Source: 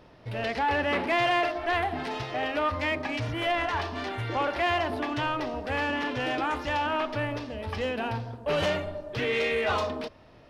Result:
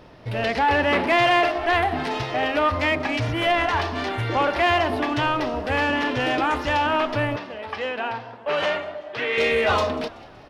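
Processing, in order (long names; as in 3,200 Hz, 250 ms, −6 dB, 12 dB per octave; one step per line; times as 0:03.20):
0:07.36–0:09.38: resonant band-pass 1,400 Hz, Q 0.58
echo with shifted repeats 189 ms, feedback 50%, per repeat +72 Hz, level −20.5 dB
level +6.5 dB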